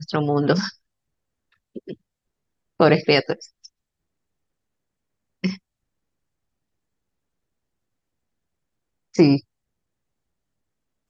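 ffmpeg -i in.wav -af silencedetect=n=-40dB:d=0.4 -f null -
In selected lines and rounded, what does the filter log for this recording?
silence_start: 0.71
silence_end: 1.76 | silence_duration: 1.05
silence_start: 1.93
silence_end: 2.80 | silence_duration: 0.86
silence_start: 3.66
silence_end: 5.43 | silence_duration: 1.77
silence_start: 5.57
silence_end: 9.14 | silence_duration: 3.57
silence_start: 9.40
silence_end: 11.09 | silence_duration: 1.69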